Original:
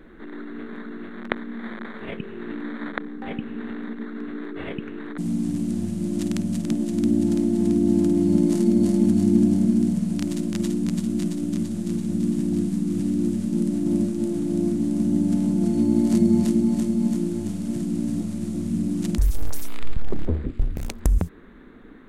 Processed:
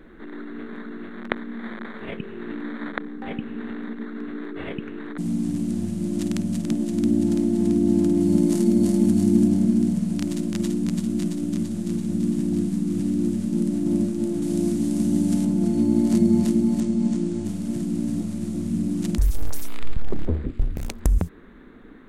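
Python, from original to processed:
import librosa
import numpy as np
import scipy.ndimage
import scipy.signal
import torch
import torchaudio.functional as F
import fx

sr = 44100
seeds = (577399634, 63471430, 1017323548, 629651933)

y = fx.high_shelf(x, sr, hz=7100.0, db=6.0, at=(8.2, 9.48))
y = fx.high_shelf(y, sr, hz=2600.0, db=8.0, at=(14.42, 15.45))
y = fx.lowpass(y, sr, hz=8700.0, slope=24, at=(16.8, 17.45))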